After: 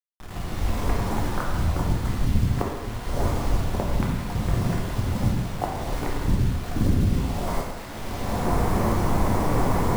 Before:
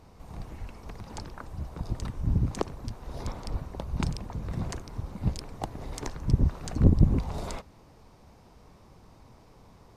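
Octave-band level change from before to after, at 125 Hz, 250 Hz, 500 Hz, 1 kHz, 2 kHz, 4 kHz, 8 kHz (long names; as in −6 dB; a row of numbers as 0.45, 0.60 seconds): +5.0, +7.0, +10.5, +14.0, +13.5, +9.0, +8.5 decibels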